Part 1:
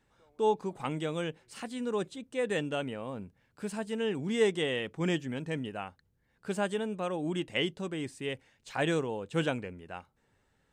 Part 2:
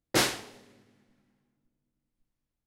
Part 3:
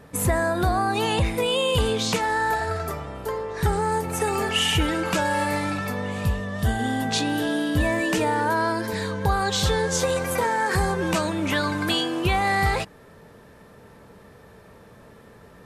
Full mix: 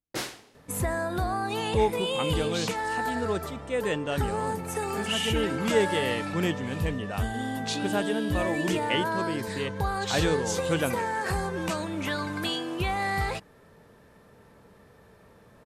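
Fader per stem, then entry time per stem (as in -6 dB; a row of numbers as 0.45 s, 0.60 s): +2.5 dB, -8.5 dB, -6.5 dB; 1.35 s, 0.00 s, 0.55 s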